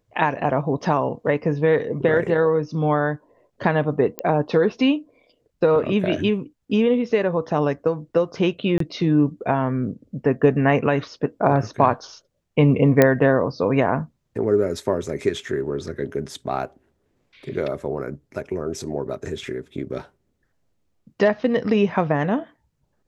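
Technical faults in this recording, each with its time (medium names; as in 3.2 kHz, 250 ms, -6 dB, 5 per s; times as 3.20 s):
4.19 s: pop -10 dBFS
8.78–8.80 s: dropout 23 ms
13.02 s: pop -2 dBFS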